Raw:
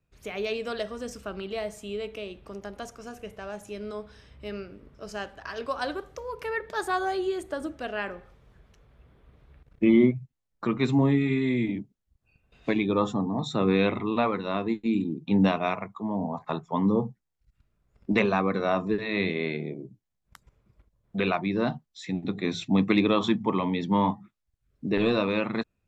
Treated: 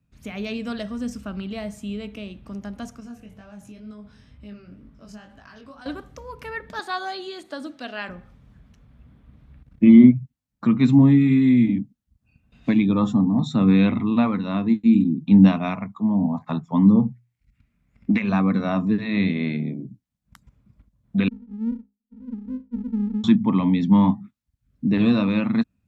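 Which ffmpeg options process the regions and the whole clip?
-filter_complex "[0:a]asettb=1/sr,asplit=3[s0][s1][s2];[s0]atrim=end=3.004[s3];[s1]atrim=start=3:end=5.86,asetpts=PTS-STARTPTS,afade=t=in:d=0.004:c=qsin,afade=t=out:st=2.856:d=0.004:c=qsin,acompressor=threshold=0.00891:ratio=3:attack=3.2:release=140:knee=1:detection=peak,flanger=delay=18.5:depth=4.9:speed=2.1[s4];[s2]atrim=start=5.856[s5];[s3][s4]acrossfade=d=0.004:c1=hsin:c2=qsin[s6];[s6][s5]acrossfade=d=0.004:c1=qsin:c2=hsin,asettb=1/sr,asplit=3[s7][s8][s9];[s7]atrim=end=6.794[s10];[s8]atrim=start=6.79:end=8.09,asetpts=PTS-STARTPTS,afade=t=in:d=0.004:c=qsin,afade=t=out:st=1.296:d=0.004:c=qsin,equalizer=f=4200:t=o:w=0.7:g=11,acrossover=split=4700[s11][s12];[s12]acompressor=threshold=0.00316:ratio=4:attack=1:release=60[s13];[s11][s13]amix=inputs=2:normalize=0,highpass=360[s14];[s9]atrim=start=8.086[s15];[s10][s14]acrossfade=d=0.004:c1=hsin:c2=qsin[s16];[s16][s15]acrossfade=d=0.004:c1=qsin:c2=hsin,asettb=1/sr,asplit=3[s17][s18][s19];[s17]atrim=end=17.074[s20];[s18]atrim=start=17.07:end=18.29,asetpts=PTS-STARTPTS,afade=t=in:d=0.004:c=qsin,afade=t=out:st=1.216:d=0.004:c=qsin,equalizer=f=2200:w=2.2:g=12.5,bandreject=f=60:t=h:w=6,bandreject=f=120:t=h:w=6,acompressor=threshold=0.0794:ratio=12:attack=3.2:release=140:knee=1:detection=peak[s21];[s19]atrim=start=18.286[s22];[s20][s21]acrossfade=d=0.004:c1=hsin:c2=qsin[s23];[s23][s22]acrossfade=d=0.004:c1=qsin:c2=hsin,asettb=1/sr,asplit=3[s24][s25][s26];[s24]atrim=end=21.284[s27];[s25]atrim=start=21.28:end=23.24,asetpts=PTS-STARTPTS,afade=t=in:d=0.004:c=qsin,afade=t=out:st=1.956:d=0.004:c=qsin,asuperpass=centerf=230:order=20:qfactor=4,aeval=exprs='max(val(0),0)':c=same[s28];[s26]atrim=start=23.236[s29];[s27][s28]acrossfade=d=0.004:c1=hsin:c2=qsin[s30];[s30][s29]acrossfade=d=0.004:c1=qsin:c2=hsin,highpass=43,lowshelf=f=310:t=q:w=3:g=6.5"

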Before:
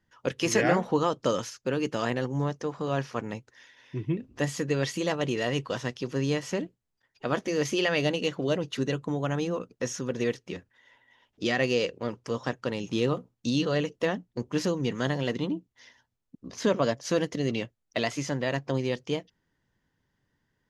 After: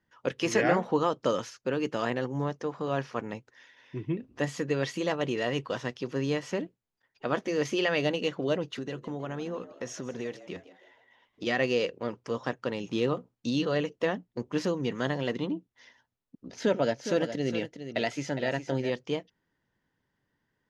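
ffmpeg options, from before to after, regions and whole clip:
-filter_complex "[0:a]asettb=1/sr,asplit=3[s0][s1][s2];[s0]atrim=end=8.654[s3];[s1]atrim=start=8.65:end=11.47,asetpts=PTS-STARTPTS,afade=t=in:d=0.004:c=qsin,afade=t=out:st=2.816:d=0.004:c=qsin,acompressor=threshold=0.0316:ratio=4:attack=3.2:release=140:knee=1:detection=peak,asplit=5[s4][s5][s6][s7][s8];[s5]adelay=159,afreqshift=94,volume=0.158[s9];[s6]adelay=318,afreqshift=188,volume=0.0684[s10];[s7]adelay=477,afreqshift=282,volume=0.0292[s11];[s8]adelay=636,afreqshift=376,volume=0.0126[s12];[s4][s9][s10][s11][s12]amix=inputs=5:normalize=0,atrim=end_sample=124362[s13];[s2]atrim=start=11.466[s14];[s3][s13]acrossfade=d=0.004:c1=hsin:c2=qsin[s15];[s15][s14]acrossfade=d=0.004:c1=qsin:c2=hsin,asettb=1/sr,asplit=3[s16][s17][s18];[s16]atrim=end=16.464[s19];[s17]atrim=start=16.46:end=18.9,asetpts=PTS-STARTPTS,afade=t=in:d=0.004:c=qsin,afade=t=out:st=2.436:d=0.004:c=qsin,asuperstop=centerf=1100:order=4:qfactor=4.3,aecho=1:1:411:0.316,atrim=end_sample=107604[s20];[s18]atrim=start=18.896[s21];[s19][s20]acrossfade=d=0.004:c1=hsin:c2=qsin[s22];[s22][s21]acrossfade=d=0.004:c1=qsin:c2=hsin,lowpass=f=3600:p=1,lowshelf=f=130:g=-8.5"

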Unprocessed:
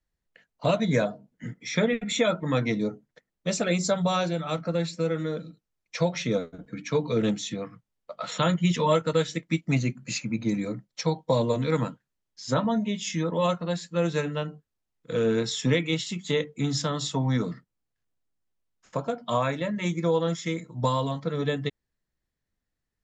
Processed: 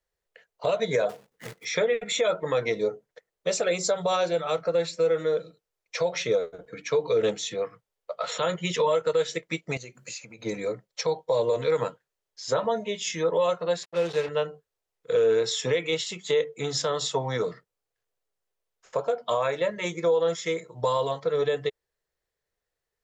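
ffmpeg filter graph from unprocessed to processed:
-filter_complex "[0:a]asettb=1/sr,asplit=3[s0][s1][s2];[s0]atrim=end=1.094[s3];[s1]atrim=start=1.09:end=1.65,asetpts=PTS-STARTPTS,afade=t=in:d=0.004:c=qsin,afade=t=out:st=0.556:d=0.004:c=qsin,bandreject=f=620:w=6.9,acrusher=bits=2:mode=log:mix=0:aa=0.000001[s4];[s2]atrim=start=1.646[s5];[s3][s4]acrossfade=d=0.004:c1=hsin:c2=qsin[s6];[s6][s5]acrossfade=d=0.004:c1=qsin:c2=hsin,asettb=1/sr,asplit=3[s7][s8][s9];[s7]atrim=end=9.774[s10];[s8]atrim=start=9.77:end=10.43,asetpts=PTS-STARTPTS,afade=t=in:d=0.004:c=qsin,afade=t=out:st=0.656:d=0.004:c=qsin,highshelf=f=4400:g=10.5,acompressor=threshold=0.0141:ratio=6:attack=3.2:release=140:knee=1:detection=peak[s11];[s9]atrim=start=10.426[s12];[s10][s11]acrossfade=d=0.004:c1=hsin:c2=qsin[s13];[s13][s12]acrossfade=d=0.004:c1=qsin:c2=hsin,asettb=1/sr,asplit=3[s14][s15][s16];[s14]atrim=end=13.834[s17];[s15]atrim=start=13.83:end=14.29,asetpts=PTS-STARTPTS,afade=t=in:d=0.004:c=qsin,afade=t=out:st=0.456:d=0.004:c=qsin,equalizer=f=940:t=o:w=2.8:g=-7.5,acrusher=bits=5:mix=0:aa=0.5,highpass=100,lowpass=4800[s18];[s16]atrim=start=14.286[s19];[s17][s18]acrossfade=d=0.004:c1=hsin:c2=qsin[s20];[s20][s19]acrossfade=d=0.004:c1=qsin:c2=hsin,lowshelf=f=340:t=q:w=3:g=-8.5,alimiter=limit=0.133:level=0:latency=1:release=81,volume=1.26"

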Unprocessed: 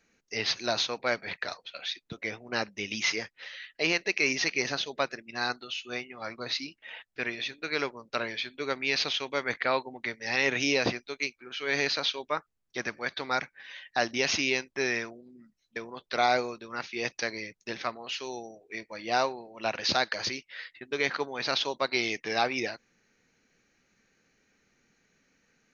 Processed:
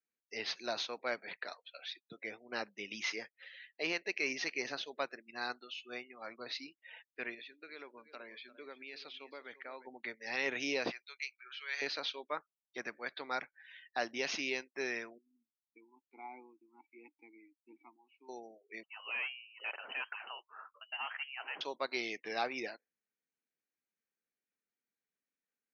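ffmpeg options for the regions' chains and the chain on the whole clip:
-filter_complex "[0:a]asettb=1/sr,asplit=3[s0][s1][s2];[s0]atrim=end=7.344[s3];[s1]atrim=start=7.34:end=9.87,asetpts=PTS-STARTPTS,afade=t=in:d=0.004:c=qsin,afade=t=out:st=2.526:d=0.004:c=qsin,acompressor=threshold=0.01:ratio=2.5:attack=3.2:release=140:knee=1:detection=peak,aecho=1:1:348:0.251,atrim=end_sample=111573[s4];[s2]atrim=start=9.866[s5];[s3][s4]acrossfade=d=0.004:c1=hsin:c2=qsin[s6];[s6][s5]acrossfade=d=0.004:c1=qsin:c2=hsin,asettb=1/sr,asplit=3[s7][s8][s9];[s7]atrim=end=10.914[s10];[s8]atrim=start=10.91:end=11.82,asetpts=PTS-STARTPTS,afade=t=in:d=0.004:c=qsin,afade=t=out:st=0.906:d=0.004:c=qsin,highpass=1300,acompressor=mode=upward:threshold=0.02:ratio=2.5:attack=3.2:release=140:knee=2.83:detection=peak[s11];[s9]atrim=start=11.816[s12];[s10][s11]acrossfade=d=0.004:c1=hsin:c2=qsin[s13];[s13][s12]acrossfade=d=0.004:c1=qsin:c2=hsin,asettb=1/sr,asplit=3[s14][s15][s16];[s14]atrim=end=15.184[s17];[s15]atrim=start=15.18:end=18.29,asetpts=PTS-STARTPTS,afade=t=in:d=0.004:c=qsin,afade=t=out:st=3.106:d=0.004:c=qsin,asplit=3[s18][s19][s20];[s18]bandpass=f=300:t=q:w=8,volume=1[s21];[s19]bandpass=f=870:t=q:w=8,volume=0.501[s22];[s20]bandpass=f=2240:t=q:w=8,volume=0.355[s23];[s21][s22][s23]amix=inputs=3:normalize=0,equalizer=f=4300:w=1:g=-6.5[s24];[s16]atrim=start=18.286[s25];[s17][s24]acrossfade=d=0.004:c1=hsin:c2=qsin[s26];[s26][s25]acrossfade=d=0.004:c1=qsin:c2=hsin,asettb=1/sr,asplit=3[s27][s28][s29];[s27]atrim=end=18.834[s30];[s28]atrim=start=18.83:end=21.61,asetpts=PTS-STARTPTS,afade=t=in:d=0.004:c=qsin,afade=t=out:st=2.776:d=0.004:c=qsin,highpass=f=160:w=0.5412,highpass=f=160:w=1.3066,volume=17.8,asoftclip=hard,volume=0.0562,lowpass=f=2700:t=q:w=0.5098,lowpass=f=2700:t=q:w=0.6013,lowpass=f=2700:t=q:w=0.9,lowpass=f=2700:t=q:w=2.563,afreqshift=-3200[s31];[s29]atrim=start=21.606[s32];[s30][s31]acrossfade=d=0.004:c1=hsin:c2=qsin[s33];[s33][s32]acrossfade=d=0.004:c1=qsin:c2=hsin,highpass=230,highshelf=f=5300:g=-6,afftdn=nr=20:nf=-48,volume=0.398"

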